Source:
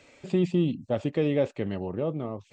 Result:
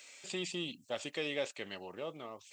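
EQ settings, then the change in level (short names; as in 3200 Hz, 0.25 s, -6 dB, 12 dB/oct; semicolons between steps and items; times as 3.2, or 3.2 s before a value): differentiator; +11.0 dB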